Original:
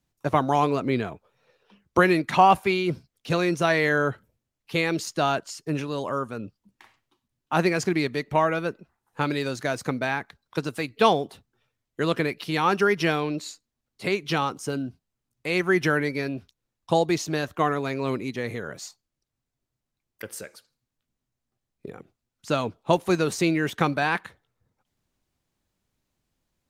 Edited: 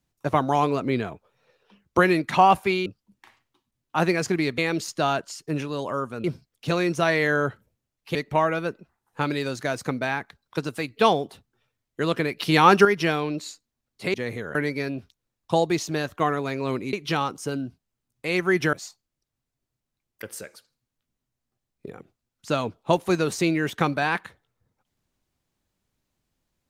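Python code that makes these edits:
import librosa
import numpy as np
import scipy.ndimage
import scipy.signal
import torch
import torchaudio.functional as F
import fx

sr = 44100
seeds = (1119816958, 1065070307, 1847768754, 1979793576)

y = fx.edit(x, sr, fx.swap(start_s=2.86, length_s=1.91, other_s=6.43, other_length_s=1.72),
    fx.clip_gain(start_s=12.39, length_s=0.46, db=7.0),
    fx.swap(start_s=14.14, length_s=1.8, other_s=18.32, other_length_s=0.41), tone=tone)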